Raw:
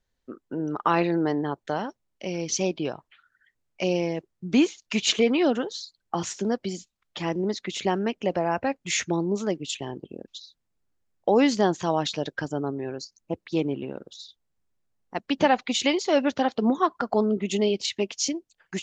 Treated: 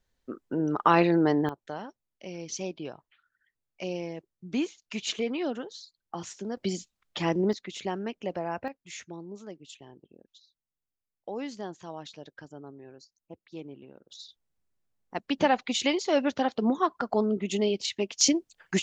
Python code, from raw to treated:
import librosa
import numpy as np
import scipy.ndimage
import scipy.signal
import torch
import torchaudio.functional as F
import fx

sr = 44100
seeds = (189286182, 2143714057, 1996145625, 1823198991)

y = fx.gain(x, sr, db=fx.steps((0.0, 1.5), (1.49, -9.0), (6.57, 1.0), (7.53, -7.5), (8.68, -16.0), (14.1, -3.0), (18.21, 5.0)))